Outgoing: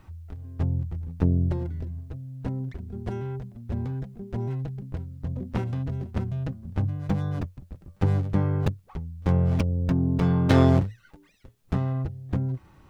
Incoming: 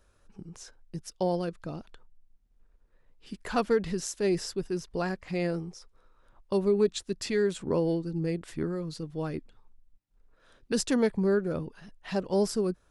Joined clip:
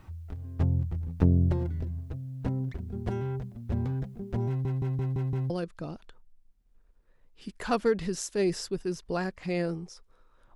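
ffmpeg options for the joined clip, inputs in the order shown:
-filter_complex "[0:a]apad=whole_dur=10.55,atrim=end=10.55,asplit=6[s0][s1][s2][s3][s4][s5];[s0]atrim=end=4.652[s6];[s1]atrim=start=4.478:end=4.652[s7];[s2]atrim=start=4.478:end=4.652[s8];[s3]atrim=start=4.478:end=4.652[s9];[s4]atrim=start=4.478:end=4.652[s10];[s5]atrim=start=4.478:end=4.652[s11];[1:a]atrim=start=1.348:end=6.4[s12];[s6][s7]acrossfade=d=0.004:c1=hsin:c2=hsin[s13];[s13][s8]acrossfade=d=0.004:c1=hsin:c2=hsin[s14];[s14][s9]acrossfade=d=0.004:c1=hsin:c2=hsin[s15];[s15][s10]acrossfade=d=0.004:c1=hsin:c2=hsin[s16];[s16][s11]acrossfade=d=0.004:c1=hsin:c2=hsin[s17];[s17][s12]acrossfade=d=0.004:c1=hsin:c2=hsin"

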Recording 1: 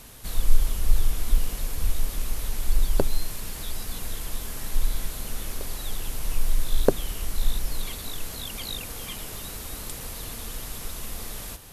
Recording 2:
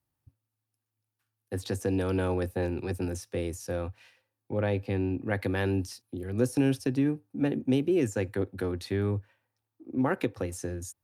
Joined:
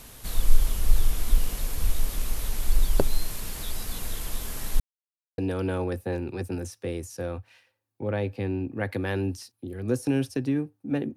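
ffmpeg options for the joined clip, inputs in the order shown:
-filter_complex "[0:a]apad=whole_dur=11.16,atrim=end=11.16,asplit=2[s0][s1];[s0]atrim=end=4.8,asetpts=PTS-STARTPTS,afade=t=out:st=4.796:d=0.004:c=hsin[s2];[s1]atrim=start=4.8:end=5.38,asetpts=PTS-STARTPTS,volume=0[s3];[1:a]atrim=start=1.88:end=7.66,asetpts=PTS-STARTPTS,afade=t=in:d=0.004:c=hsin[s4];[s2][s3][s4]concat=n=3:v=0:a=1"

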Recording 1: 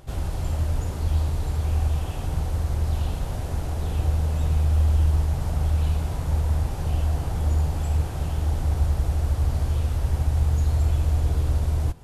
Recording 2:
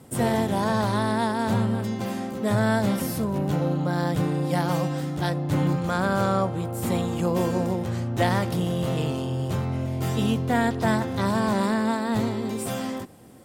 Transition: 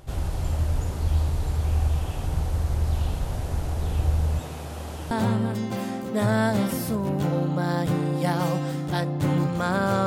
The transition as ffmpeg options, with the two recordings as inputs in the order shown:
-filter_complex "[0:a]asettb=1/sr,asplit=3[s0][s1][s2];[s0]atrim=end=4.394[s3];[s1]atrim=start=4.39:end=5.11,asetpts=PTS-STARTPTS,afade=t=in:d=0.004:c=qsin,afade=t=out:st=0.716:d=0.004:c=qsin,highpass=210[s4];[s2]atrim=start=5.106[s5];[s3][s4]acrossfade=d=0.004:c1=hsin:c2=qsin[s6];[s6][s5]acrossfade=d=0.004:c1=qsin:c2=hsin,apad=whole_dur=10.06,atrim=end=10.06,atrim=end=5.112[s7];[1:a]atrim=start=1.398:end=6.35[s8];[s7][s8]acrossfade=d=0.004:c1=hsin:c2=hsin"

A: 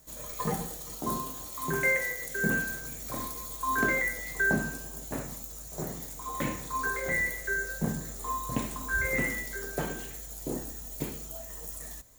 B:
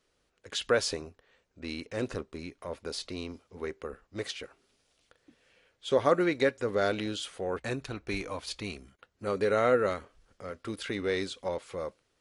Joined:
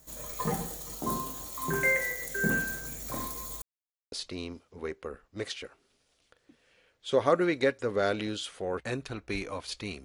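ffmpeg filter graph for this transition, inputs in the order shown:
-filter_complex "[0:a]apad=whole_dur=10.04,atrim=end=10.04,asplit=2[s0][s1];[s0]atrim=end=3.62,asetpts=PTS-STARTPTS,afade=t=out:st=3.616:d=0.004:c=hsin[s2];[s1]atrim=start=3.62:end=4.12,asetpts=PTS-STARTPTS,volume=0[s3];[1:a]atrim=start=2.91:end=8.83,asetpts=PTS-STARTPTS,afade=t=in:d=0.004:c=hsin[s4];[s2][s3][s4]concat=n=3:v=0:a=1"

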